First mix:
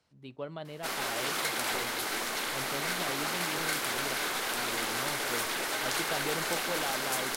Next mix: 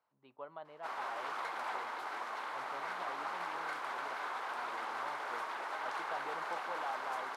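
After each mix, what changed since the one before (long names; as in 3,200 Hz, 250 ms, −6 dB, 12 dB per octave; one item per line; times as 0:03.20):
master: add resonant band-pass 980 Hz, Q 2.2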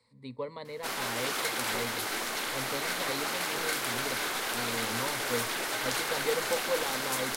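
speech: add EQ curve with evenly spaced ripples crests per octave 0.96, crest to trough 17 dB
master: remove resonant band-pass 980 Hz, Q 2.2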